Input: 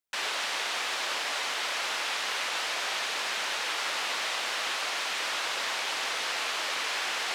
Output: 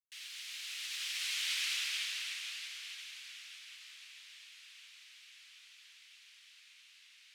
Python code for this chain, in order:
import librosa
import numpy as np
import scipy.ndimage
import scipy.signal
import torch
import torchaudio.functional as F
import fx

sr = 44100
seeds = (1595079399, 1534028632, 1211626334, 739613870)

y = fx.doppler_pass(x, sr, speed_mps=35, closest_m=20.0, pass_at_s=1.61)
y = fx.ladder_highpass(y, sr, hz=2000.0, resonance_pct=30)
y = fx.high_shelf(y, sr, hz=9300.0, db=8.5)
y = fx.upward_expand(y, sr, threshold_db=-50.0, expansion=1.5)
y = F.gain(torch.from_numpy(y), 2.5).numpy()